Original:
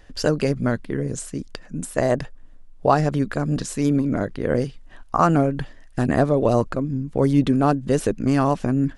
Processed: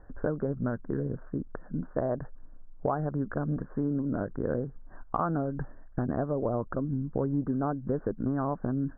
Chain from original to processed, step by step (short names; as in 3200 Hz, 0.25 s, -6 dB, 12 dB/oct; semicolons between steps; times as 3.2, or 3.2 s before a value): steep low-pass 1600 Hz 72 dB/oct; compressor 4:1, threshold -25 dBFS, peak gain reduction 12 dB; gain -2 dB